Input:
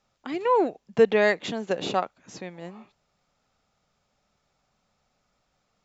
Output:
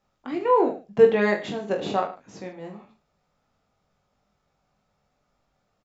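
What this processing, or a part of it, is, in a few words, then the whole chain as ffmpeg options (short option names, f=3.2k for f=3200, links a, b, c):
behind a face mask: -af "highshelf=f=2k:g=-8,aecho=1:1:20|44|72.8|107.4|148.8:0.631|0.398|0.251|0.158|0.1"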